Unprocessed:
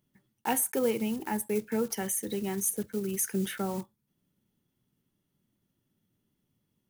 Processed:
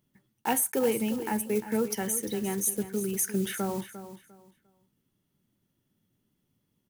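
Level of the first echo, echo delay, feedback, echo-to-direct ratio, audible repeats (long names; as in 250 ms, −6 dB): −12.5 dB, 350 ms, 24%, −12.0 dB, 2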